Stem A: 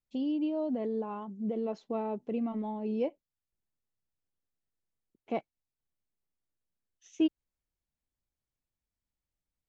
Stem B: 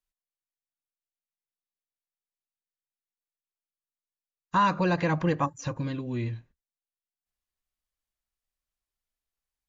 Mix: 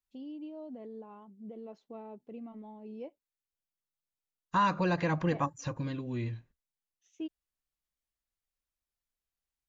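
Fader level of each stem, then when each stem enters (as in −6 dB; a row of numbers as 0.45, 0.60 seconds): −12.0, −4.0 decibels; 0.00, 0.00 seconds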